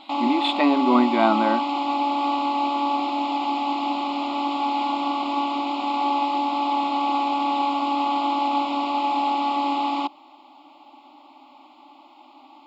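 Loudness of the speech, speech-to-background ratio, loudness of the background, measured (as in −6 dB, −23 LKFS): −21.5 LKFS, 2.5 dB, −24.0 LKFS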